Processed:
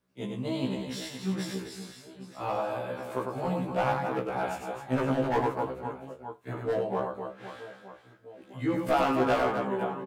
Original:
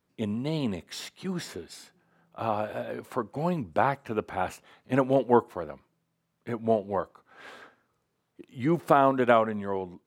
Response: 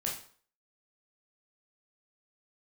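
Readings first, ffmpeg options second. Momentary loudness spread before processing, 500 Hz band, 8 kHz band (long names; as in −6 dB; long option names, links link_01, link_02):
19 LU, −2.5 dB, can't be measured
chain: -filter_complex "[0:a]aecho=1:1:100|260|516|925.6|1581:0.631|0.398|0.251|0.158|0.1,volume=17dB,asoftclip=hard,volume=-17dB,asplit=2[link_01][link_02];[1:a]atrim=start_sample=2205,afade=type=out:start_time=0.13:duration=0.01,atrim=end_sample=6174[link_03];[link_02][link_03]afir=irnorm=-1:irlink=0,volume=-11dB[link_04];[link_01][link_04]amix=inputs=2:normalize=0,afftfilt=real='re*1.73*eq(mod(b,3),0)':imag='im*1.73*eq(mod(b,3),0)':win_size=2048:overlap=0.75,volume=-2dB"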